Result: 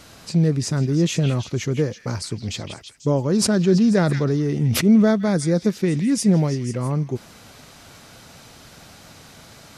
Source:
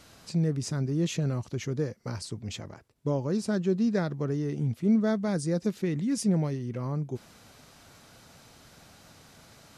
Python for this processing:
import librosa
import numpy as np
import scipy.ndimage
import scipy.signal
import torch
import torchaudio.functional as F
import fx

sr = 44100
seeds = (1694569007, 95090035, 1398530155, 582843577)

y = fx.echo_stepped(x, sr, ms=164, hz=2600.0, octaves=0.7, feedback_pct=70, wet_db=-5)
y = fx.sustainer(y, sr, db_per_s=29.0, at=(3.26, 5.11))
y = y * 10.0 ** (8.5 / 20.0)